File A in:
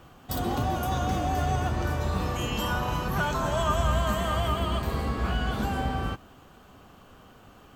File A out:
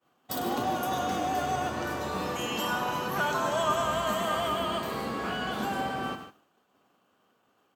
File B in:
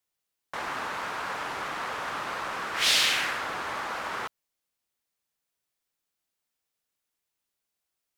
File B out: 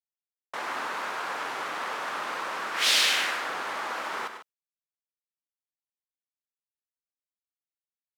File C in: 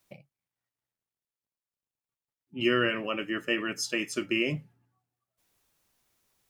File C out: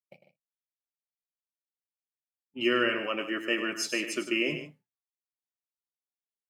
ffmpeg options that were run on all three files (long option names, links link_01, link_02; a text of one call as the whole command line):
ffmpeg -i in.wav -af "highpass=240,agate=range=-33dB:threshold=-43dB:ratio=3:detection=peak,aecho=1:1:101|149:0.299|0.237" out.wav